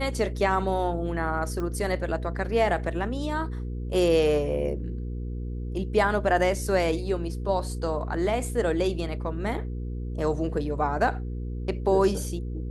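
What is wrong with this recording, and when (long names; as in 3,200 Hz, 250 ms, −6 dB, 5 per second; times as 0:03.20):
mains hum 60 Hz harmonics 8 −32 dBFS
0:01.60: click −21 dBFS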